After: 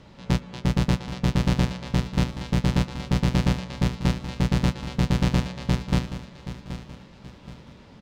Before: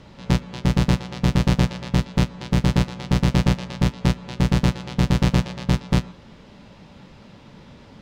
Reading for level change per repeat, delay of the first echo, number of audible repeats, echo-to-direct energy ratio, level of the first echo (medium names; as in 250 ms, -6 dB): -8.5 dB, 776 ms, 3, -11.5 dB, -12.0 dB